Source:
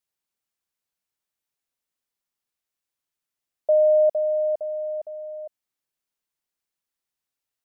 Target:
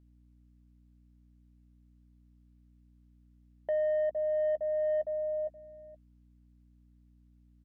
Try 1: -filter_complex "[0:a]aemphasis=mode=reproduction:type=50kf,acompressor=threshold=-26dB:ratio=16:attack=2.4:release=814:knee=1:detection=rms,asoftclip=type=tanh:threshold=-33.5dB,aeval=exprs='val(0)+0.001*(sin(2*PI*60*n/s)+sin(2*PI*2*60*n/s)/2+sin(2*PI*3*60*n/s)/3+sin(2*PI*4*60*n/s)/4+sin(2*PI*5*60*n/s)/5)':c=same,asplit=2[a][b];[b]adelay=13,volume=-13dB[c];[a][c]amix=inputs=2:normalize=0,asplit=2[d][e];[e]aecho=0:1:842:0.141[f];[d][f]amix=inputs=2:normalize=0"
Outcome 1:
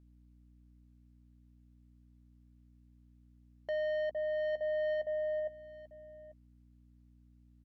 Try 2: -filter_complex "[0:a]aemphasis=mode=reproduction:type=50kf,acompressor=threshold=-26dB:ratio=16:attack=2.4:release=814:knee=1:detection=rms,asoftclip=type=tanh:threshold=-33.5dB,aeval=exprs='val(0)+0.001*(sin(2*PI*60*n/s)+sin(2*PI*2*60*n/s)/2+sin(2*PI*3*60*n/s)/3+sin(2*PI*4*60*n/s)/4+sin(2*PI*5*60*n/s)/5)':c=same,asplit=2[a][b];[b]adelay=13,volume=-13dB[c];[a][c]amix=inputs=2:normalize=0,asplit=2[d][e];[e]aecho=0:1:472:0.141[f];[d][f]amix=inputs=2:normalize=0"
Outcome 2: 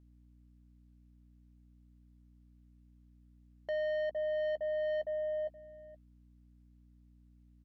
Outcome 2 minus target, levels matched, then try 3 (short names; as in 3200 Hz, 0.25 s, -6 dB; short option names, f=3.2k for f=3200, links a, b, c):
soft clip: distortion +10 dB
-filter_complex "[0:a]aemphasis=mode=reproduction:type=50kf,acompressor=threshold=-26dB:ratio=16:attack=2.4:release=814:knee=1:detection=rms,asoftclip=type=tanh:threshold=-25.5dB,aeval=exprs='val(0)+0.001*(sin(2*PI*60*n/s)+sin(2*PI*2*60*n/s)/2+sin(2*PI*3*60*n/s)/3+sin(2*PI*4*60*n/s)/4+sin(2*PI*5*60*n/s)/5)':c=same,asplit=2[a][b];[b]adelay=13,volume=-13dB[c];[a][c]amix=inputs=2:normalize=0,asplit=2[d][e];[e]aecho=0:1:472:0.141[f];[d][f]amix=inputs=2:normalize=0"